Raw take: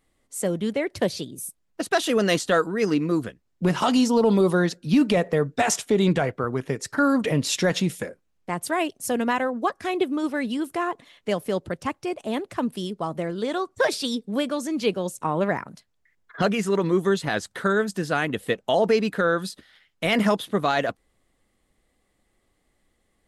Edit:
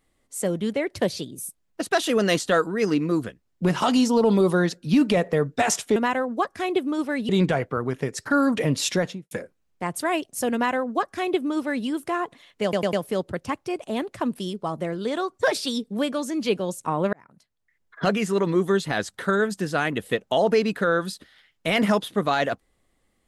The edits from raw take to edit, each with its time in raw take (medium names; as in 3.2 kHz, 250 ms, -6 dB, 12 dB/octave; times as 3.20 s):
7.56–7.98 s: studio fade out
9.21–10.54 s: copy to 5.96 s
11.30 s: stutter 0.10 s, 4 plays
15.50–16.47 s: fade in